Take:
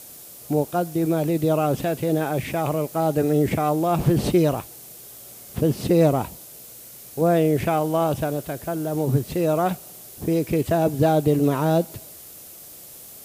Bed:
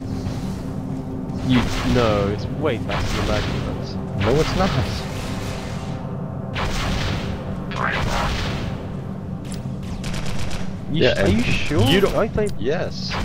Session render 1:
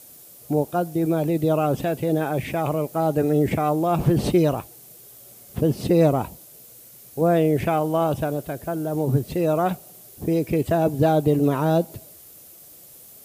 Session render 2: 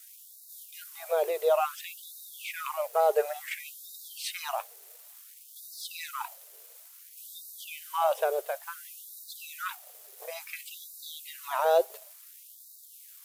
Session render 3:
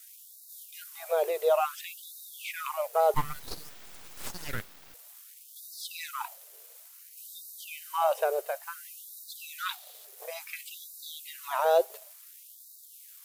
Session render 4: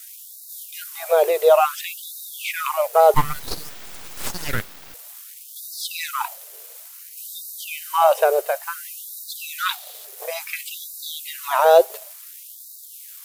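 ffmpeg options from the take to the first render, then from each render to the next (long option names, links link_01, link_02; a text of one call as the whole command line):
ffmpeg -i in.wav -af "afftdn=noise_reduction=6:noise_floor=-43" out.wav
ffmpeg -i in.wav -af "aeval=exprs='sgn(val(0))*max(abs(val(0))-0.00316,0)':channel_layout=same,afftfilt=real='re*gte(b*sr/1024,370*pow(3700/370,0.5+0.5*sin(2*PI*0.57*pts/sr)))':imag='im*gte(b*sr/1024,370*pow(3700/370,0.5+0.5*sin(2*PI*0.57*pts/sr)))':win_size=1024:overlap=0.75" out.wav
ffmpeg -i in.wav -filter_complex "[0:a]asettb=1/sr,asplit=3[link_01][link_02][link_03];[link_01]atrim=end=3.144[link_04];[link_02]atrim=start=3.14:end=4.94,asetpts=PTS-STARTPTS,afade=type=in:duration=0.004:curve=qsin,afade=type=out:start_time=1.796:duration=0.004:curve=qsin,aeval=exprs='abs(val(0))':channel_layout=same[link_05];[link_03]atrim=start=4.936[link_06];[link_04][link_05]acrossfade=duration=0.004:curve1=hsin:curve2=qsin[link_07];[link_07][link_06]acrossfade=duration=0.004:curve1=qsin:curve2=hsin,asettb=1/sr,asplit=3[link_08][link_09][link_10];[link_08]atrim=end=6.944[link_11];[link_09]atrim=start=6.94:end=8.97,asetpts=PTS-STARTPTS,afade=type=in:duration=0.004:curve=qsin,afade=type=out:start_time=2.026:duration=0.004:curve=qsin,bandreject=frequency=3400:width=12[link_12];[link_10]atrim=start=8.966[link_13];[link_11][link_12]acrossfade=duration=0.004:curve1=hsin:curve2=qsin[link_14];[link_14][link_13]acrossfade=duration=0.004:curve1=qsin:curve2=hsin,asettb=1/sr,asplit=3[link_15][link_16][link_17];[link_15]atrim=end=9.584[link_18];[link_16]atrim=start=9.58:end=10.05,asetpts=PTS-STARTPTS,afade=type=in:duration=0.004:curve=qsin,afade=type=out:start_time=0.466:duration=0.004:curve=qsin,equalizer=frequency=3800:width_type=o:width=0.59:gain=11.5[link_19];[link_17]atrim=start=10.046[link_20];[link_18][link_19]acrossfade=duration=0.004:curve1=hsin:curve2=qsin[link_21];[link_21][link_20]acrossfade=duration=0.004:curve1=qsin:curve2=hsin" out.wav
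ffmpeg -i in.wav -af "volume=10.5dB" out.wav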